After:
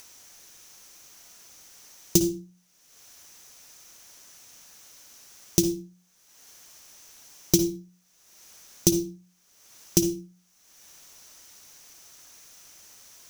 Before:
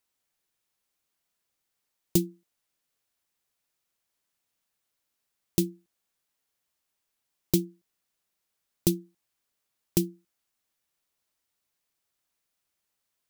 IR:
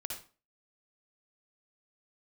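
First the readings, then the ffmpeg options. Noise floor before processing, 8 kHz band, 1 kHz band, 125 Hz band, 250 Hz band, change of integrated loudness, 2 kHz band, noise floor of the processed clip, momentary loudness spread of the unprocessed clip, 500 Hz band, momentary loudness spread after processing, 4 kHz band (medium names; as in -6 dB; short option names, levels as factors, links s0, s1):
-82 dBFS, +10.5 dB, no reading, +1.5 dB, +4.0 dB, +4.5 dB, +5.5 dB, -64 dBFS, 9 LU, +5.0 dB, 16 LU, +8.0 dB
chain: -filter_complex "[0:a]equalizer=f=6000:t=o:w=0.37:g=12.5,bandreject=f=60:t=h:w=6,bandreject=f=120:t=h:w=6,bandreject=f=180:t=h:w=6,acompressor=mode=upward:threshold=0.0178:ratio=2.5,asplit=2[s0][s1];[1:a]atrim=start_sample=2205[s2];[s1][s2]afir=irnorm=-1:irlink=0,volume=0.708[s3];[s0][s3]amix=inputs=2:normalize=0"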